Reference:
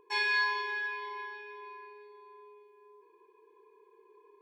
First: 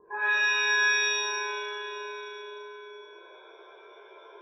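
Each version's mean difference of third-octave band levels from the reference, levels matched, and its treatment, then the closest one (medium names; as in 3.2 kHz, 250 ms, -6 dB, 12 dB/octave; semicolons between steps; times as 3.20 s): 7.0 dB: steep low-pass 1.7 kHz 96 dB/octave; compression, threshold -37 dBFS, peak gain reduction 9.5 dB; two-band feedback delay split 1.3 kHz, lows 137 ms, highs 399 ms, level -13.5 dB; pitch-shifted reverb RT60 1.3 s, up +7 st, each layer -2 dB, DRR -9 dB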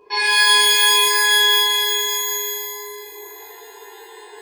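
10.5 dB: tone controls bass -6 dB, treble +8 dB; compression 4:1, threshold -33 dBFS, peak gain reduction 8 dB; resampled via 11.025 kHz; pitch-shifted reverb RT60 2.3 s, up +12 st, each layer -2 dB, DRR -11 dB; trim +7.5 dB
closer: first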